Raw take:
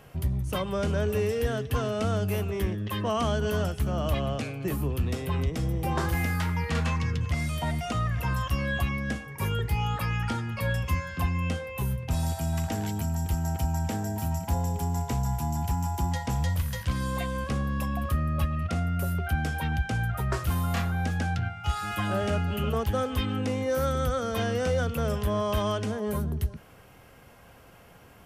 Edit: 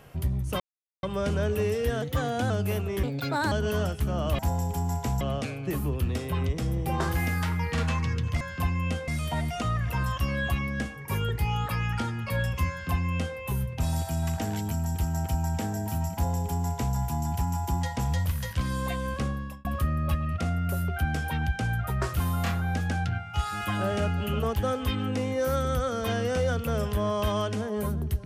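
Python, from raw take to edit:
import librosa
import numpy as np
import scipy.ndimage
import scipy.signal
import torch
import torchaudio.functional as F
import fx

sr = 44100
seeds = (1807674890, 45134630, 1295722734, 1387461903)

y = fx.edit(x, sr, fx.insert_silence(at_s=0.6, length_s=0.43),
    fx.speed_span(start_s=1.59, length_s=0.54, speed=1.12),
    fx.speed_span(start_s=2.66, length_s=0.65, speed=1.34),
    fx.duplicate(start_s=11.0, length_s=0.67, to_s=7.38),
    fx.duplicate(start_s=14.44, length_s=0.82, to_s=4.18),
    fx.fade_out_span(start_s=17.53, length_s=0.42), tone=tone)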